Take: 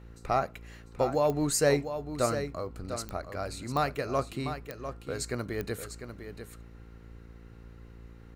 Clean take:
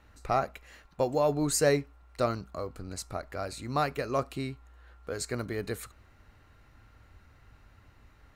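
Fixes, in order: de-click; de-hum 57.2 Hz, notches 9; inverse comb 699 ms -9.5 dB

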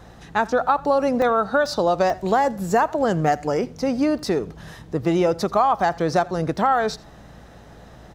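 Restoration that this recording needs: de-hum 57.3 Hz, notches 5; interpolate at 1.22/1.66/2.10/4.19/5.80/6.56 s, 1.1 ms; inverse comb 84 ms -22 dB

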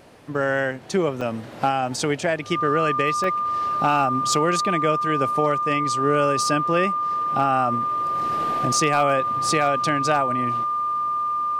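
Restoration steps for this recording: clip repair -9.5 dBFS; band-stop 1.2 kHz, Q 30; interpolate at 1.21/3.24 s, 2.6 ms

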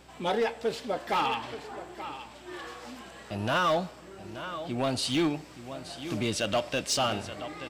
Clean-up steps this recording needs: clip repair -21 dBFS; de-hum 62.5 Hz, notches 4; inverse comb 877 ms -13 dB

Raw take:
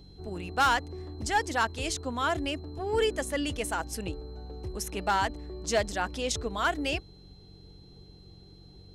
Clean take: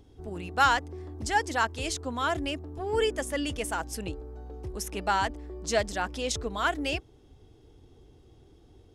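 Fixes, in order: clip repair -18.5 dBFS; de-hum 46.3 Hz, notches 4; band-stop 4.1 kHz, Q 30

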